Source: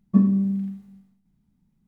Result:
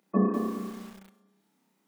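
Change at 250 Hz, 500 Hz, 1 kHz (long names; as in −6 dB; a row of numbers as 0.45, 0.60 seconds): −8.0 dB, +10.5 dB, can't be measured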